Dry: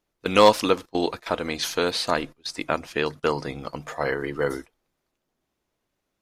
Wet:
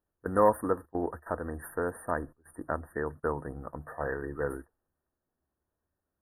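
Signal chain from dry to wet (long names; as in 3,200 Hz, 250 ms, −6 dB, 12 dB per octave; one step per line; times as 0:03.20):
linear-phase brick-wall band-stop 1,900–8,700 Hz
parametric band 76 Hz +14 dB 0.5 octaves
level −7.5 dB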